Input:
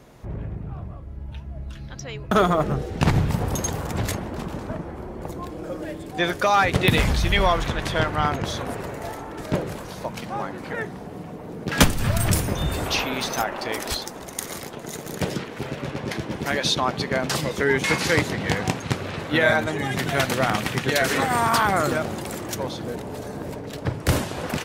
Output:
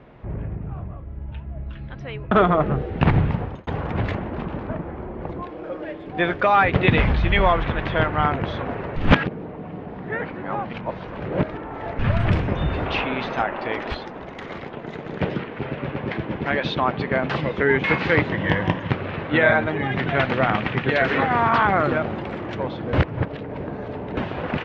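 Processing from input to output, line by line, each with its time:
3.26–3.67 s: fade out
5.42–6.07 s: tone controls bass -10 dB, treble +4 dB
8.96–11.99 s: reverse
18.32–18.90 s: rippled EQ curve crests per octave 1.2, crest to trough 8 dB
22.93–24.17 s: reverse
whole clip: low-pass 2.9 kHz 24 dB/octave; trim +2 dB

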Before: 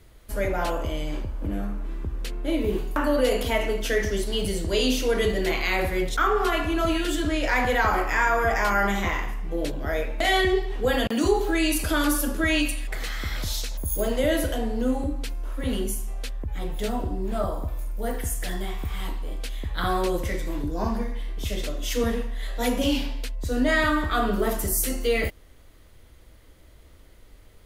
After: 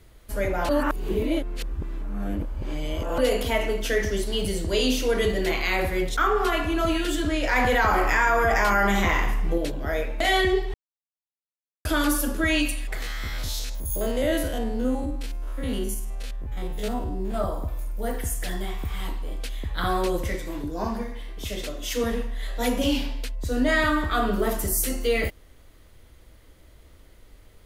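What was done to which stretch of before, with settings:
0.69–3.18 s: reverse
7.56–9.58 s: level flattener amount 70%
10.74–11.85 s: mute
13.02–17.34 s: spectrogram pixelated in time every 50 ms
20.35–22.12 s: bass shelf 150 Hz -6 dB

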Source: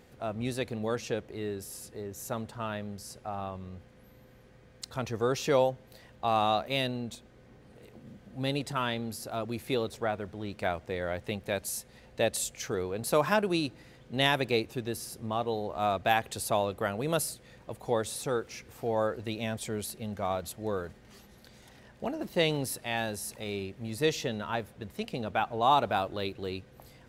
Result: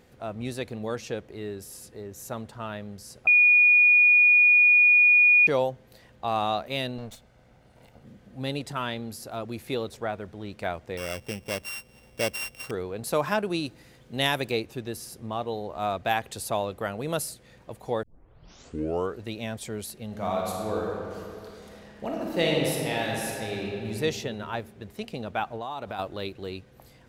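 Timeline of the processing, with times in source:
3.27–5.47 s: bleep 2.45 kHz -14 dBFS
6.98–8.05 s: comb filter that takes the minimum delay 1.4 ms
10.97–12.71 s: sorted samples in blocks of 16 samples
13.66–14.52 s: treble shelf 7.1 kHz +9 dB
18.03 s: tape start 1.18 s
20.06–23.89 s: reverb throw, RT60 2.6 s, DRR -2.5 dB
25.55–25.99 s: compression 12:1, threshold -30 dBFS

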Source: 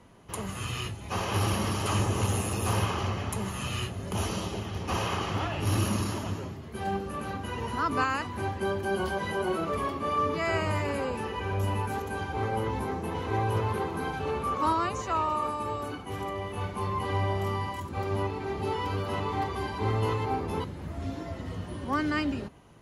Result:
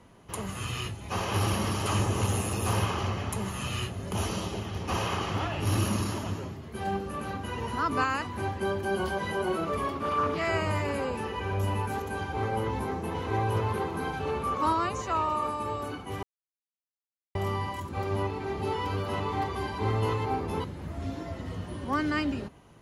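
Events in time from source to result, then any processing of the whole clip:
9.95–10.48 s: loudspeaker Doppler distortion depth 0.17 ms
16.23–17.35 s: mute

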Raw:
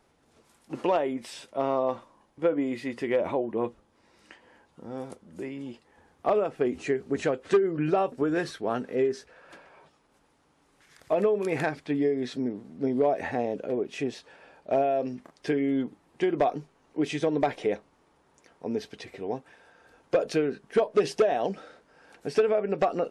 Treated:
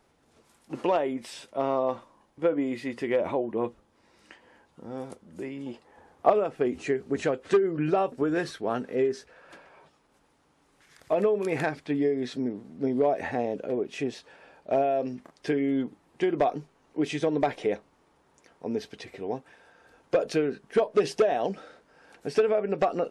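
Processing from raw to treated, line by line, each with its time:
5.66–6.30 s: peaking EQ 680 Hz +7 dB 2 oct

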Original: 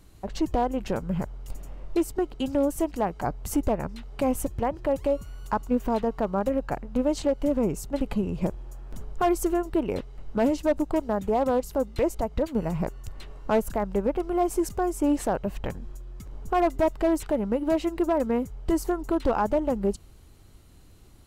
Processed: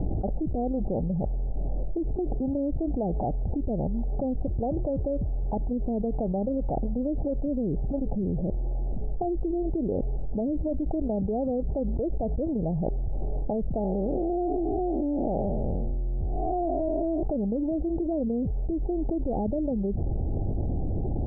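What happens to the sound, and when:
13.79–17.23 s: spectral blur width 244 ms
whole clip: low-pass that closes with the level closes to 440 Hz, closed at -20.5 dBFS; Chebyshev low-pass 800 Hz, order 6; level flattener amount 100%; trim -6 dB

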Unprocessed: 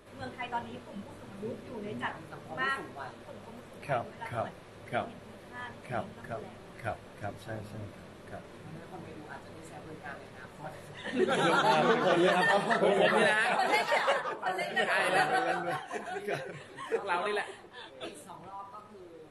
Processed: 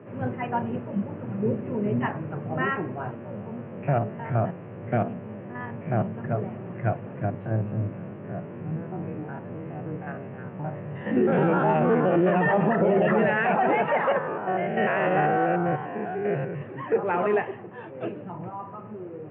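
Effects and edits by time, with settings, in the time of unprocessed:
3.15–6.15 s: spectrogram pixelated in time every 50 ms
7.25–12.32 s: spectrogram pixelated in time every 50 ms
14.18–16.62 s: spectrogram pixelated in time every 100 ms
whole clip: Chebyshev band-pass 110–2800 Hz, order 5; tilt EQ -4 dB/octave; peak limiter -20.5 dBFS; trim +7 dB

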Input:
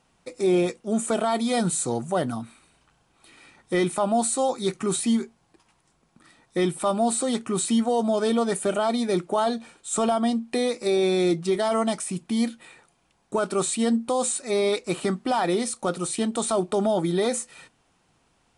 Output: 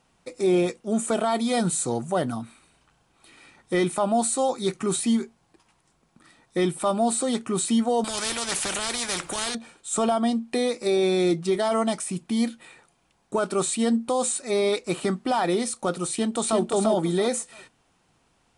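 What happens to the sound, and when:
8.04–9.55 s: spectrum-flattening compressor 4:1
16.09–16.60 s: echo throw 340 ms, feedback 25%, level -4.5 dB

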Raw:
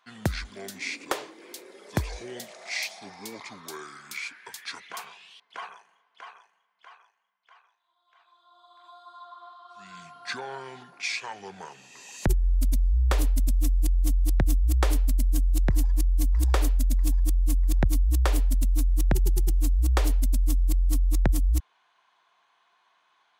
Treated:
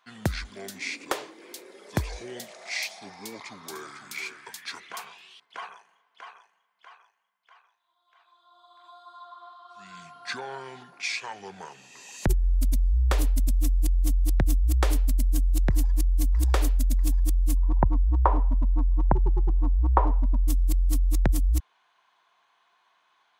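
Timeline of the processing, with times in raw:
3.10–3.95 s: echo throw 500 ms, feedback 30%, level -9.5 dB
17.57–20.48 s: resonant low-pass 980 Hz, resonance Q 6.7

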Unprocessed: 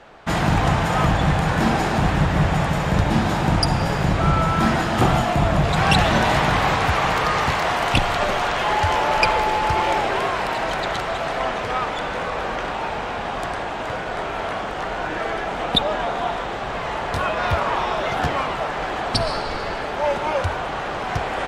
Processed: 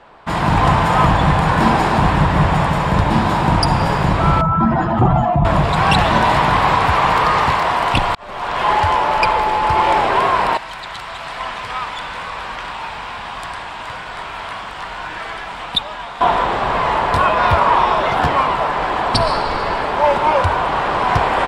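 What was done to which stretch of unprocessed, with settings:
4.41–5.45 s: spectral contrast enhancement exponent 1.8
8.15–8.78 s: fade in
10.57–16.21 s: amplifier tone stack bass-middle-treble 5-5-5
whole clip: graphic EQ with 31 bands 1 kHz +9 dB, 6.3 kHz -7 dB, 12.5 kHz -6 dB; level rider; trim -1 dB

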